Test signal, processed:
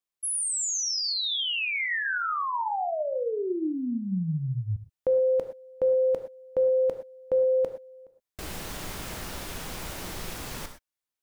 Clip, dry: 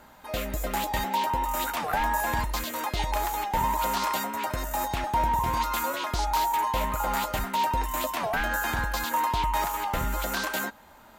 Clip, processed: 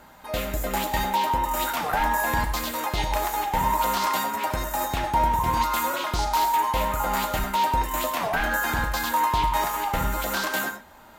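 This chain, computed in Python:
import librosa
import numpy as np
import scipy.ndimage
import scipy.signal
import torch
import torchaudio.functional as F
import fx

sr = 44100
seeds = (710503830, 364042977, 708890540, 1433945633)

y = fx.rev_gated(x, sr, seeds[0], gate_ms=140, shape='flat', drr_db=6.5)
y = y * 10.0 ** (2.0 / 20.0)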